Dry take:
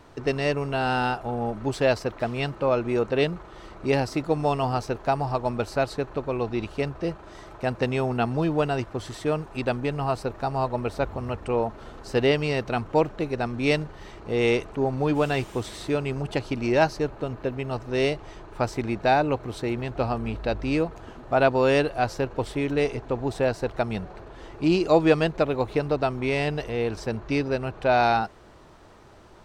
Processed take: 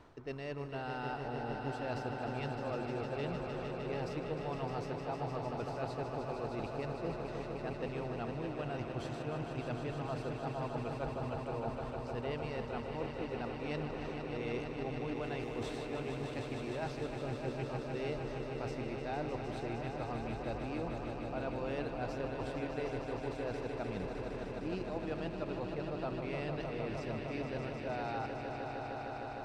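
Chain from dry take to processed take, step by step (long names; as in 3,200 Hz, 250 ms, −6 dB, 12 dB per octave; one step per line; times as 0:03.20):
high-shelf EQ 7,000 Hz −11 dB
reversed playback
downward compressor 5 to 1, threshold −33 dBFS, peak gain reduction 17.5 dB
reversed playback
echo that builds up and dies away 153 ms, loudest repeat 5, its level −8 dB
level −6.5 dB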